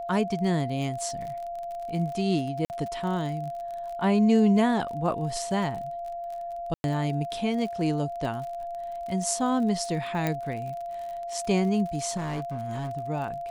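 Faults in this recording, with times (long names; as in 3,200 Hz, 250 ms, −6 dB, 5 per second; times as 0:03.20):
surface crackle 39 per second −35 dBFS
whistle 690 Hz −32 dBFS
0:02.65–0:02.70: drop-out 49 ms
0:06.74–0:06.84: drop-out 101 ms
0:10.27: click −13 dBFS
0:12.16–0:12.91: clipping −28 dBFS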